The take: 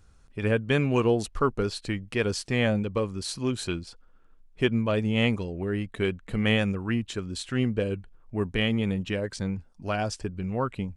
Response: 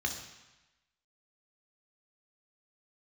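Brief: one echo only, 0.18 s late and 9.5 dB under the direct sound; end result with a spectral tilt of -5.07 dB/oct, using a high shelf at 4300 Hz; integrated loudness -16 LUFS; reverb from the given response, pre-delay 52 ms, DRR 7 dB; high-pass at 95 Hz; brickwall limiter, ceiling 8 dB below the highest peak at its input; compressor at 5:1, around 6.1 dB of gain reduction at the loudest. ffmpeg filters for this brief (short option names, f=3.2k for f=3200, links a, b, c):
-filter_complex "[0:a]highpass=95,highshelf=f=4.3k:g=4,acompressor=threshold=-25dB:ratio=5,alimiter=limit=-22.5dB:level=0:latency=1,aecho=1:1:180:0.335,asplit=2[a][b];[1:a]atrim=start_sample=2205,adelay=52[c];[b][c]afir=irnorm=-1:irlink=0,volume=-11.5dB[d];[a][d]amix=inputs=2:normalize=0,volume=16dB"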